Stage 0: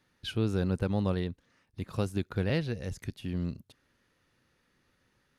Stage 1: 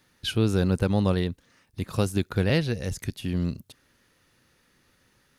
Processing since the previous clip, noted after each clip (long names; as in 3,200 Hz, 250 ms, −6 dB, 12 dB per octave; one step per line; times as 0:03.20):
high-shelf EQ 5,200 Hz +8 dB
level +6 dB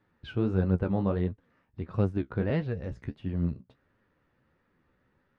low-pass filter 1,500 Hz 12 dB per octave
flanger 1.5 Hz, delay 8.9 ms, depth 8 ms, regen +36%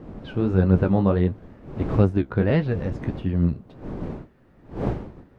fade in at the beginning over 0.64 s
wind on the microphone 300 Hz −42 dBFS
level +8 dB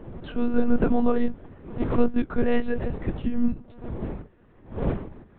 one-pitch LPC vocoder at 8 kHz 240 Hz